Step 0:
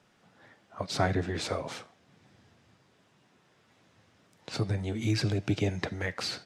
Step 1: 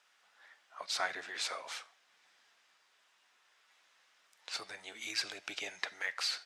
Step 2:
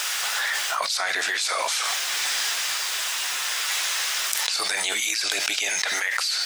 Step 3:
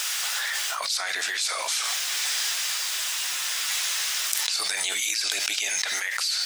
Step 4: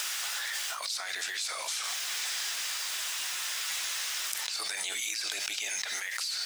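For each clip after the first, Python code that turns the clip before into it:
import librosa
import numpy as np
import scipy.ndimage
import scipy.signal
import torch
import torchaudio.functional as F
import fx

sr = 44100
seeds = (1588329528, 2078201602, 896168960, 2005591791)

y1 = scipy.signal.sosfilt(scipy.signal.butter(2, 1200.0, 'highpass', fs=sr, output='sos'), x)
y2 = fx.riaa(y1, sr, side='recording')
y2 = fx.env_flatten(y2, sr, amount_pct=100)
y2 = y2 * 10.0 ** (-2.0 / 20.0)
y3 = fx.high_shelf(y2, sr, hz=2200.0, db=7.5)
y3 = y3 * 10.0 ** (-7.0 / 20.0)
y4 = fx.mod_noise(y3, sr, seeds[0], snr_db=24)
y4 = fx.band_squash(y4, sr, depth_pct=70)
y4 = y4 * 10.0 ** (-7.5 / 20.0)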